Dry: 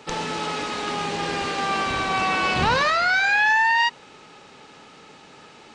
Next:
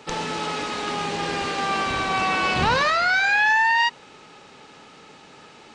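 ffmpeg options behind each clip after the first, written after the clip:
-af anull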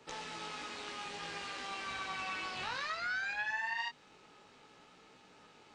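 -filter_complex "[0:a]acrossover=split=360|1100[a][b][c];[a]acompressor=threshold=-43dB:ratio=4[d];[b]acompressor=threshold=-37dB:ratio=4[e];[c]acompressor=threshold=-23dB:ratio=4[f];[d][e][f]amix=inputs=3:normalize=0,flanger=delay=15.5:depth=5.8:speed=0.59,tremolo=f=210:d=0.462,volume=-8.5dB"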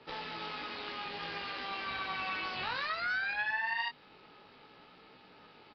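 -af "aresample=11025,aresample=44100,volume=3dB"

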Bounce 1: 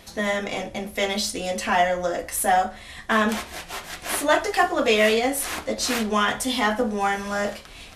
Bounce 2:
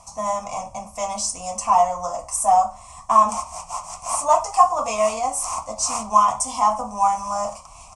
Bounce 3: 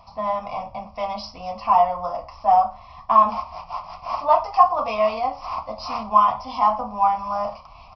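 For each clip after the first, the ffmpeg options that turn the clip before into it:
-af "firequalizer=gain_entry='entry(120,0);entry(390,-23);entry(630,3);entry(1100,14);entry(1600,-25);entry(2400,-6);entry(3700,-18);entry(5600,6);entry(8600,10);entry(13000,-23)':delay=0.05:min_phase=1,volume=-1.5dB"
-af "aresample=11025,aresample=44100"

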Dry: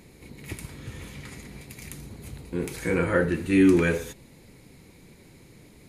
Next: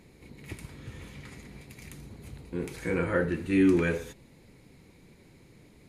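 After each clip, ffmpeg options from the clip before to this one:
-af "highshelf=f=6.6k:g=-7,volume=-4dB"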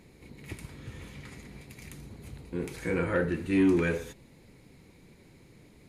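-af "asoftclip=type=tanh:threshold=-15dB"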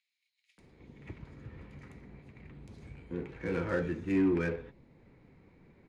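-filter_complex "[0:a]acrossover=split=200|840|3200[a][b][c][d];[c]acompressor=mode=upward:threshold=-58dB:ratio=2.5[e];[a][b][e][d]amix=inputs=4:normalize=0,acrossover=split=3300[f][g];[f]adelay=580[h];[h][g]amix=inputs=2:normalize=0,adynamicsmooth=sensitivity=6.5:basefreq=2.5k,volume=-4dB"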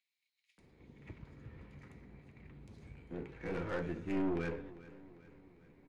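-af "asoftclip=type=tanh:threshold=-25.5dB,aeval=exprs='0.0531*(cos(1*acos(clip(val(0)/0.0531,-1,1)))-cos(1*PI/2))+0.015*(cos(2*acos(clip(val(0)/0.0531,-1,1)))-cos(2*PI/2))':c=same,aecho=1:1:398|796|1194|1592:0.126|0.0655|0.034|0.0177,volume=-4.5dB"

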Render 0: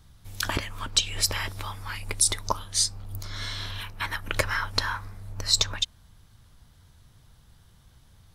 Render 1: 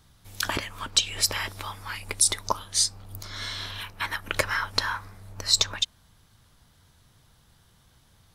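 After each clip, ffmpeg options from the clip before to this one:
-af "lowshelf=f=120:g=-9.5,volume=1dB"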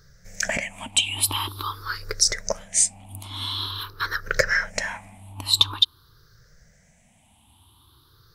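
-af "afftfilt=real='re*pow(10,21/40*sin(2*PI*(0.57*log(max(b,1)*sr/1024/100)/log(2)-(0.47)*(pts-256)/sr)))':imag='im*pow(10,21/40*sin(2*PI*(0.57*log(max(b,1)*sr/1024/100)/log(2)-(0.47)*(pts-256)/sr)))':win_size=1024:overlap=0.75,volume=-1.5dB"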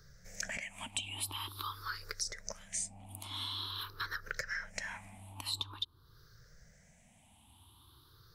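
-filter_complex "[0:a]acrossover=split=270|1000[a][b][c];[a]acompressor=threshold=-46dB:ratio=4[d];[b]acompressor=threshold=-50dB:ratio=4[e];[c]acompressor=threshold=-33dB:ratio=4[f];[d][e][f]amix=inputs=3:normalize=0,volume=-5dB"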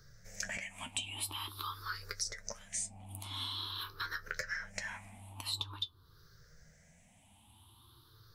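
-af "flanger=delay=8.6:depth=4.2:regen=53:speed=0.38:shape=sinusoidal,volume=4dB"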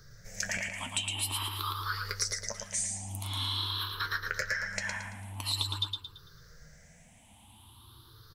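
-af "aecho=1:1:112|224|336|448|560:0.596|0.226|0.086|0.0327|0.0124,volume=5dB"

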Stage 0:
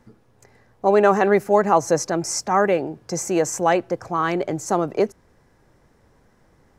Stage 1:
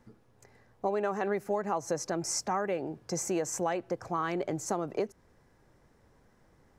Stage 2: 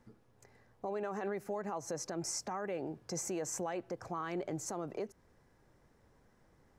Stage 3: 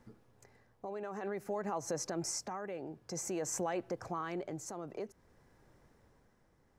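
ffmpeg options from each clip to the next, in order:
-af "acompressor=threshold=-21dB:ratio=6,volume=-6dB"
-af "alimiter=level_in=1.5dB:limit=-24dB:level=0:latency=1:release=43,volume=-1.5dB,volume=-3.5dB"
-af "tremolo=f=0.53:d=0.52,volume=2.5dB"

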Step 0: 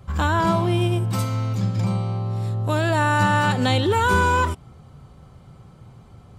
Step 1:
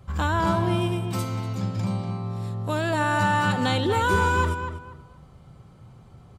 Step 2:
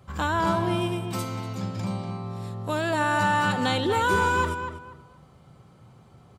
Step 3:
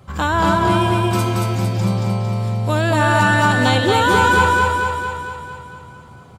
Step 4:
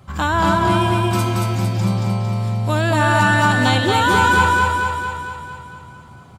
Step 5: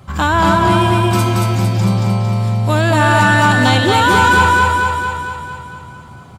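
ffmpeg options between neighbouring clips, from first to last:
-filter_complex "[0:a]asplit=2[a][b];[b]adelay=241,lowpass=f=2.8k:p=1,volume=-8dB,asplit=2[c][d];[d]adelay=241,lowpass=f=2.8k:p=1,volume=0.26,asplit=2[e][f];[f]adelay=241,lowpass=f=2.8k:p=1,volume=0.26[g];[a][c][e][g]amix=inputs=4:normalize=0,volume=-3.5dB"
-af "highpass=f=160:p=1"
-af "aecho=1:1:227|454|681|908|1135|1362|1589|1816|2043:0.708|0.418|0.246|0.145|0.0858|0.0506|0.0299|0.0176|0.0104,volume=7dB"
-af "equalizer=f=470:t=o:w=0.39:g=-7"
-af "acontrast=54,volume=-1dB"

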